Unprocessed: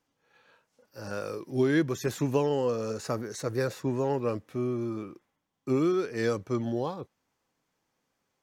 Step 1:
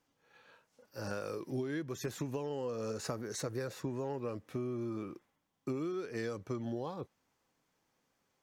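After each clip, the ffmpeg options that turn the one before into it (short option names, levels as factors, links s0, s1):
-af "acompressor=threshold=0.02:ratio=12"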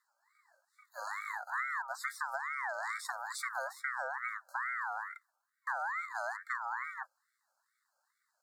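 -af "afftfilt=real='re*(1-between(b*sr/4096,550,5100))':imag='im*(1-between(b*sr/4096,550,5100))':win_size=4096:overlap=0.75,aeval=exprs='val(0)*sin(2*PI*1400*n/s+1400*0.25/2.3*sin(2*PI*2.3*n/s))':c=same,volume=1.41"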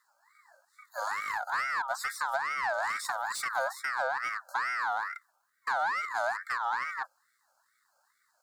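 -filter_complex "[0:a]acrossover=split=850[s0][s1];[s0]crystalizer=i=9.5:c=0[s2];[s1]asoftclip=type=tanh:threshold=0.0133[s3];[s2][s3]amix=inputs=2:normalize=0,volume=2.51"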